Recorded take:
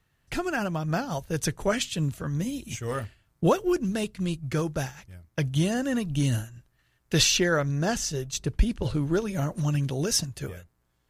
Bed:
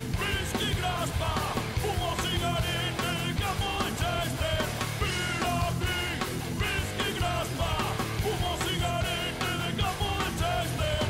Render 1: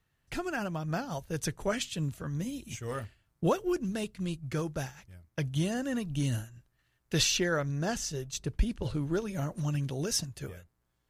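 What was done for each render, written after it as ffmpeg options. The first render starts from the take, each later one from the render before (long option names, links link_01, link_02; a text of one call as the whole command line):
ffmpeg -i in.wav -af "volume=-5.5dB" out.wav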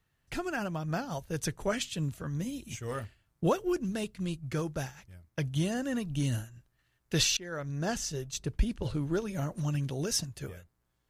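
ffmpeg -i in.wav -filter_complex "[0:a]asplit=2[link_01][link_02];[link_01]atrim=end=7.37,asetpts=PTS-STARTPTS,afade=type=out:start_time=7.366:duration=0.004:curve=hsin:silence=0.0749894[link_03];[link_02]atrim=start=7.37,asetpts=PTS-STARTPTS,afade=type=in:duration=0.51:silence=0.0749894[link_04];[link_03][link_04]concat=n=2:v=0:a=1" out.wav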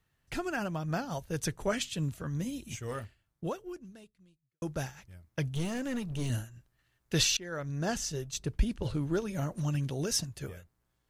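ffmpeg -i in.wav -filter_complex "[0:a]asettb=1/sr,asplit=3[link_01][link_02][link_03];[link_01]atrim=end=5.534[link_04];[link_02]atrim=start=5.53:end=6.3,asetpts=PTS-STARTPTS,afade=type=in:duration=0.004:curve=qsin,afade=type=out:start_time=0.766:duration=0.004:curve=qsin,aeval=exprs='clip(val(0),-1,0.0188)':channel_layout=same[link_05];[link_03]atrim=start=6.296[link_06];[link_04][link_05]acrossfade=duration=0.004:curve1=hsin:curve2=qsin[link_07];[link_07][link_06]acrossfade=duration=0.004:curve1=qsin:curve2=hsin,asplit=2[link_08][link_09];[link_08]atrim=end=4.62,asetpts=PTS-STARTPTS,afade=type=out:start_time=2.78:duration=1.84:curve=qua[link_10];[link_09]atrim=start=4.62,asetpts=PTS-STARTPTS,afade=type=in:duration=0.004:curve=hsin[link_11];[link_10][link_11]concat=n=2:v=0:a=1" out.wav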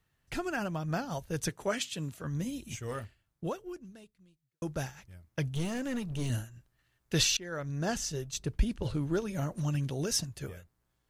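ffmpeg -i in.wav -filter_complex "[0:a]asettb=1/sr,asplit=3[link_01][link_02][link_03];[link_01]atrim=end=1.494[link_04];[link_02]atrim=start=1.49:end=2.24,asetpts=PTS-STARTPTS,afade=type=in:duration=0.004:curve=qsin,afade=type=out:start_time=0.746:duration=0.004:curve=qsin,highpass=frequency=230:poles=1[link_05];[link_03]atrim=start=2.236[link_06];[link_04][link_05]acrossfade=duration=0.004:curve1=hsin:curve2=qsin[link_07];[link_07][link_06]acrossfade=duration=0.004:curve1=qsin:curve2=hsin" out.wav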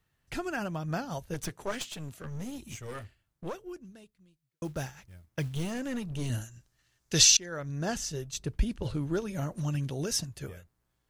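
ffmpeg -i in.wav -filter_complex "[0:a]asettb=1/sr,asplit=3[link_01][link_02][link_03];[link_01]atrim=end=1.344[link_04];[link_02]atrim=start=1.34:end=3.55,asetpts=PTS-STARTPTS,afade=type=in:duration=0.004:curve=qsin,afade=type=out:start_time=2.206:duration=0.004:curve=qsin,aeval=exprs='clip(val(0),-1,0.00841)':channel_layout=same[link_05];[link_03]atrim=start=3.546[link_06];[link_04][link_05]acrossfade=duration=0.004:curve1=hsin:curve2=qsin[link_07];[link_07][link_06]acrossfade=duration=0.004:curve1=qsin:curve2=hsin,asettb=1/sr,asplit=3[link_08][link_09][link_10];[link_08]atrim=end=4.644[link_11];[link_09]atrim=start=4.64:end=5.72,asetpts=PTS-STARTPTS,afade=type=in:duration=0.004:curve=qsin,afade=type=out:start_time=1.076:duration=0.004:curve=qsin,acrusher=bits=6:mode=log:mix=0:aa=0.000001[link_12];[link_10]atrim=start=5.716[link_13];[link_11][link_12]acrossfade=duration=0.004:curve1=hsin:curve2=qsin[link_14];[link_14][link_13]acrossfade=duration=0.004:curve1=qsin:curve2=hsin,asettb=1/sr,asplit=3[link_15][link_16][link_17];[link_15]atrim=end=6.414[link_18];[link_16]atrim=start=6.41:end=7.46,asetpts=PTS-STARTPTS,afade=type=in:duration=0.004:curve=qsin,afade=type=out:start_time=1.046:duration=0.004:curve=qsin,equalizer=frequency=6100:width=1:gain=11[link_19];[link_17]atrim=start=7.456[link_20];[link_18][link_19]acrossfade=duration=0.004:curve1=hsin:curve2=qsin[link_21];[link_21][link_20]acrossfade=duration=0.004:curve1=qsin:curve2=hsin" out.wav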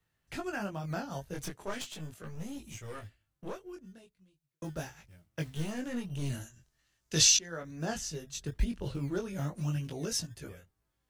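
ffmpeg -i in.wav -filter_complex "[0:a]flanger=delay=18:depth=3.8:speed=0.39,acrossover=split=140|2900[link_01][link_02][link_03];[link_01]acrusher=samples=21:mix=1:aa=0.000001:lfo=1:lforange=12.6:lforate=1.1[link_04];[link_04][link_02][link_03]amix=inputs=3:normalize=0" out.wav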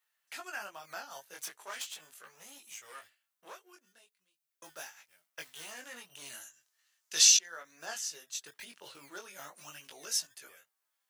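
ffmpeg -i in.wav -af "highpass=970,highshelf=frequency=8900:gain=7" out.wav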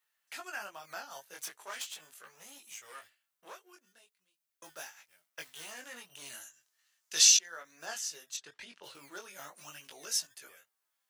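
ffmpeg -i in.wav -filter_complex "[0:a]asplit=3[link_01][link_02][link_03];[link_01]afade=type=out:start_time=8.36:duration=0.02[link_04];[link_02]lowpass=5700,afade=type=in:start_time=8.36:duration=0.02,afade=type=out:start_time=8.82:duration=0.02[link_05];[link_03]afade=type=in:start_time=8.82:duration=0.02[link_06];[link_04][link_05][link_06]amix=inputs=3:normalize=0" out.wav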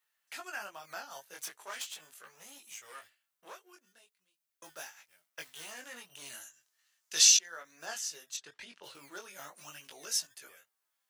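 ffmpeg -i in.wav -af anull out.wav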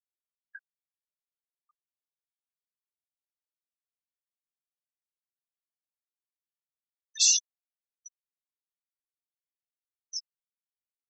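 ffmpeg -i in.wav -af "afftfilt=real='re*gte(hypot(re,im),0.0891)':imag='im*gte(hypot(re,im),0.0891)':win_size=1024:overlap=0.75,agate=range=-14dB:threshold=-55dB:ratio=16:detection=peak" out.wav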